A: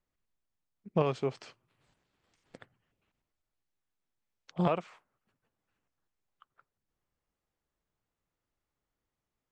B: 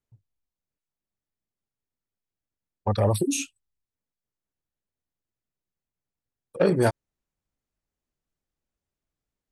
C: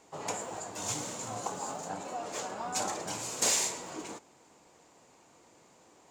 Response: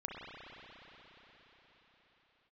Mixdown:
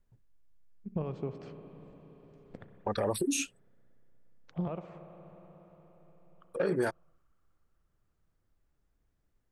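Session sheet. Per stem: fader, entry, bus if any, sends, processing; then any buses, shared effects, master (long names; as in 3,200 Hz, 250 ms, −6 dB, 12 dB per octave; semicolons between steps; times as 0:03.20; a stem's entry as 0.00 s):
−3.5 dB, 0.00 s, send −5 dB, spectral tilt −3.5 dB per octave; downward compressor 3 to 1, threshold −34 dBFS, peak gain reduction 13.5 dB
−1.0 dB, 0.00 s, no send, graphic EQ with 15 bands 100 Hz −11 dB, 400 Hz +4 dB, 1,600 Hz +8 dB; downward compressor 2.5 to 1, threshold −26 dBFS, peak gain reduction 8.5 dB; brickwall limiter −19.5 dBFS, peak gain reduction 5.5 dB
muted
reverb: on, RT60 4.9 s, pre-delay 32 ms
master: no processing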